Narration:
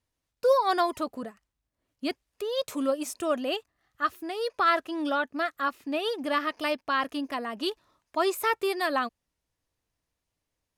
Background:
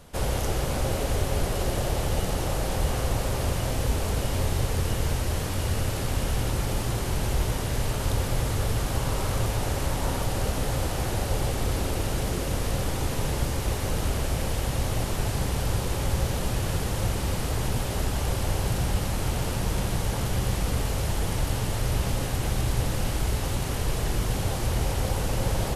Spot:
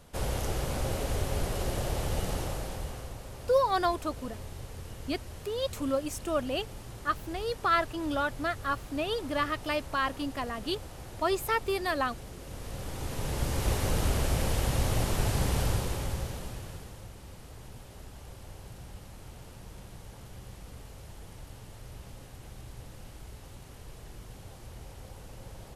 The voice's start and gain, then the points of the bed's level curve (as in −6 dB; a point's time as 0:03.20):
3.05 s, −2.5 dB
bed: 0:02.36 −5 dB
0:03.18 −16.5 dB
0:12.36 −16.5 dB
0:13.68 −1 dB
0:15.62 −1 dB
0:17.08 −20 dB